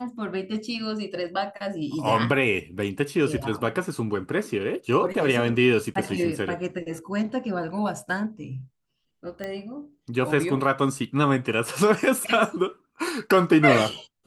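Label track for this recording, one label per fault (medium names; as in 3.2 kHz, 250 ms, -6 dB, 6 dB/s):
5.940000	5.950000	dropout 13 ms
9.440000	9.440000	pop -19 dBFS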